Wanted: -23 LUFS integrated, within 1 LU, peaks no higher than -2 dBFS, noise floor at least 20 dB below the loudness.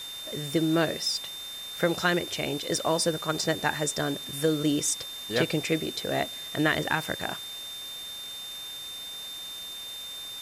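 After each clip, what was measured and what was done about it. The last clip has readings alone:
steady tone 3600 Hz; tone level -37 dBFS; noise floor -39 dBFS; noise floor target -49 dBFS; loudness -29.0 LUFS; peak -11.0 dBFS; loudness target -23.0 LUFS
-> notch 3600 Hz, Q 30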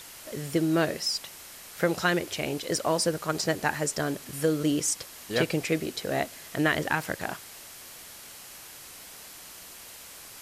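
steady tone none; noise floor -46 dBFS; noise floor target -49 dBFS
-> denoiser 6 dB, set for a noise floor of -46 dBFS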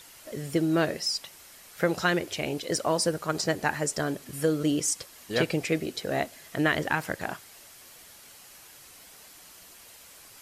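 noise floor -51 dBFS; loudness -28.5 LUFS; peak -11.5 dBFS; loudness target -23.0 LUFS
-> gain +5.5 dB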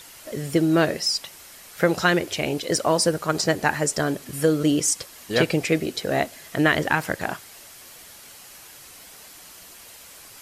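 loudness -23.0 LUFS; peak -6.0 dBFS; noise floor -46 dBFS

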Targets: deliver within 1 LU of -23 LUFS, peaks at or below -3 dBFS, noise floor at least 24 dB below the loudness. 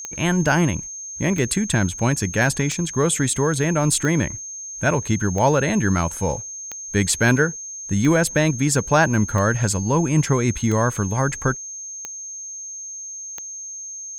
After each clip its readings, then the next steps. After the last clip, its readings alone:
clicks 11; steady tone 6400 Hz; tone level -31 dBFS; loudness -21.0 LUFS; peak -5.5 dBFS; loudness target -23.0 LUFS
-> de-click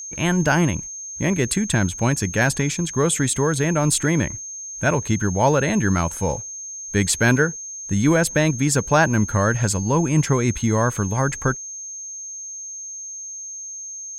clicks 0; steady tone 6400 Hz; tone level -31 dBFS
-> notch 6400 Hz, Q 30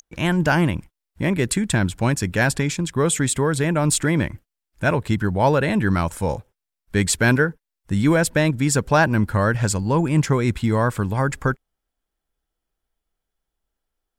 steady tone none; loudness -20.5 LUFS; peak -6.0 dBFS; loudness target -23.0 LUFS
-> gain -2.5 dB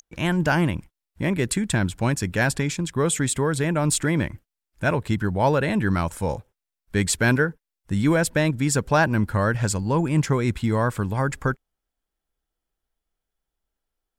loudness -23.0 LUFS; peak -8.5 dBFS; noise floor -86 dBFS

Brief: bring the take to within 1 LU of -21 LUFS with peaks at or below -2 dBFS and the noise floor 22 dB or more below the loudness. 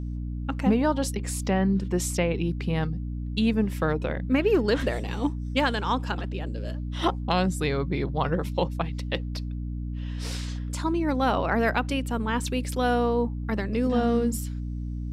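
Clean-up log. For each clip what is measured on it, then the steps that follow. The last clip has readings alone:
hum 60 Hz; harmonics up to 300 Hz; hum level -29 dBFS; loudness -27.0 LUFS; peak -11.0 dBFS; loudness target -21.0 LUFS
-> notches 60/120/180/240/300 Hz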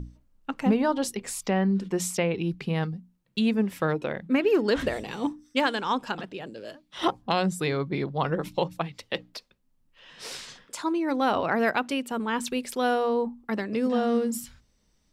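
hum none; loudness -27.5 LUFS; peak -10.0 dBFS; loudness target -21.0 LUFS
-> gain +6.5 dB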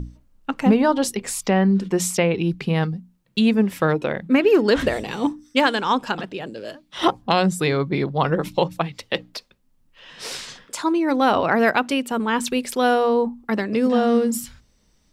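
loudness -21.0 LUFS; peak -3.5 dBFS; noise floor -61 dBFS

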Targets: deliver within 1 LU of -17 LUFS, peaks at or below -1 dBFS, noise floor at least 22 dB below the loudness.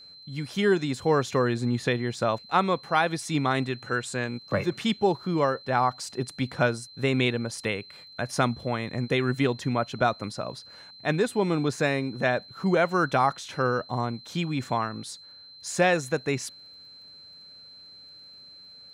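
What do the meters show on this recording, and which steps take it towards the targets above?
ticks 18/s; steady tone 4100 Hz; tone level -46 dBFS; loudness -27.0 LUFS; peak -9.5 dBFS; loudness target -17.0 LUFS
-> de-click; notch 4100 Hz, Q 30; gain +10 dB; limiter -1 dBFS

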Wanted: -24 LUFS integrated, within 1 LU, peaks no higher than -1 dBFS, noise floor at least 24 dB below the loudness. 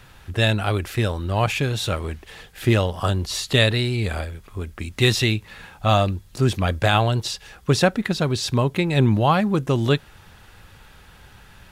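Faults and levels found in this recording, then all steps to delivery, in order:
loudness -21.5 LUFS; peak -3.5 dBFS; loudness target -24.0 LUFS
-> gain -2.5 dB

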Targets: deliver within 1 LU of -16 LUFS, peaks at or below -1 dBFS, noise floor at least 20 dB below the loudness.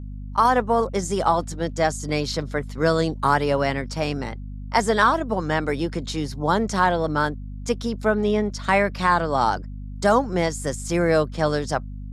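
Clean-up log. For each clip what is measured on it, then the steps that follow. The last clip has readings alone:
hum 50 Hz; harmonics up to 250 Hz; hum level -31 dBFS; loudness -22.5 LUFS; peak -5.5 dBFS; loudness target -16.0 LUFS
-> de-hum 50 Hz, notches 5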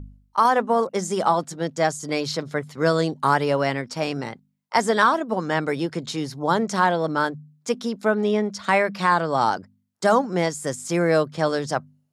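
hum none; loudness -23.0 LUFS; peak -6.0 dBFS; loudness target -16.0 LUFS
-> gain +7 dB; limiter -1 dBFS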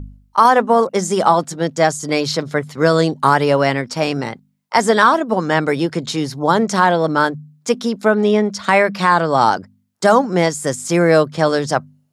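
loudness -16.5 LUFS; peak -1.0 dBFS; noise floor -61 dBFS

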